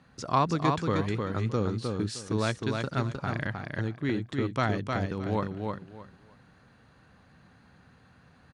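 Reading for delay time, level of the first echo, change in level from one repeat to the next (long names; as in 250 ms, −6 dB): 309 ms, −4.0 dB, −13.0 dB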